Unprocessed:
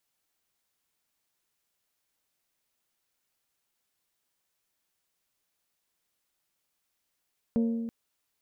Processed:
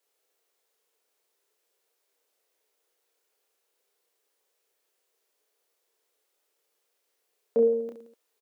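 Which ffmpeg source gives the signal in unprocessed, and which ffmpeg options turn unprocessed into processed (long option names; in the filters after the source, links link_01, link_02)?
-f lavfi -i "aevalsrc='0.0841*pow(10,-3*t/1.71)*sin(2*PI*230*t)+0.0299*pow(10,-3*t/1.053)*sin(2*PI*460*t)+0.0106*pow(10,-3*t/0.927)*sin(2*PI*552*t)+0.00376*pow(10,-3*t/0.793)*sin(2*PI*690*t)+0.00133*pow(10,-3*t/0.648)*sin(2*PI*920*t)':duration=0.33:sample_rate=44100"
-filter_complex "[0:a]highpass=frequency=440:width_type=q:width=4.9,asplit=2[link_01][link_02];[link_02]aecho=0:1:30|67.5|114.4|173|246.2:0.631|0.398|0.251|0.158|0.1[link_03];[link_01][link_03]amix=inputs=2:normalize=0"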